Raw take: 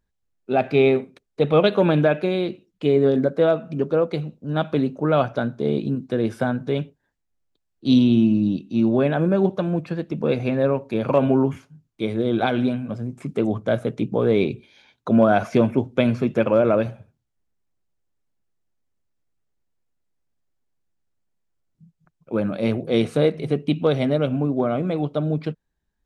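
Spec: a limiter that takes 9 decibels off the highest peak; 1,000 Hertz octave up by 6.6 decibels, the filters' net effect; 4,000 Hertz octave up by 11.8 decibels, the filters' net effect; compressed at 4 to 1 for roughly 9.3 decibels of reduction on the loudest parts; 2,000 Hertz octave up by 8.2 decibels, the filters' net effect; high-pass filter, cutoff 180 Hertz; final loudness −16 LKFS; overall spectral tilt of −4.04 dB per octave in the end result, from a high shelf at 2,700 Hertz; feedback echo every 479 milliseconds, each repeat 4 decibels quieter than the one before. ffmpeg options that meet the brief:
ffmpeg -i in.wav -af "highpass=180,equalizer=frequency=1000:width_type=o:gain=7.5,equalizer=frequency=2000:width_type=o:gain=3.5,highshelf=frequency=2700:gain=6.5,equalizer=frequency=4000:width_type=o:gain=7.5,acompressor=threshold=-21dB:ratio=4,alimiter=limit=-16dB:level=0:latency=1,aecho=1:1:479|958|1437|1916|2395|2874|3353|3832|4311:0.631|0.398|0.25|0.158|0.0994|0.0626|0.0394|0.0249|0.0157,volume=10.5dB" out.wav

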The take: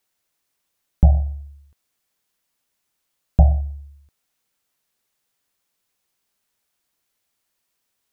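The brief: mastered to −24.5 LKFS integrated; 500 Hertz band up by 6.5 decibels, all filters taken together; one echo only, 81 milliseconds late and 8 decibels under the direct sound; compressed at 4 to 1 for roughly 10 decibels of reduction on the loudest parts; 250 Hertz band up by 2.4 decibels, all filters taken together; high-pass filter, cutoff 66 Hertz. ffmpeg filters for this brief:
ffmpeg -i in.wav -af "highpass=66,equalizer=frequency=250:width_type=o:gain=3.5,equalizer=frequency=500:width_type=o:gain=8.5,acompressor=threshold=-21dB:ratio=4,aecho=1:1:81:0.398,volume=5.5dB" out.wav

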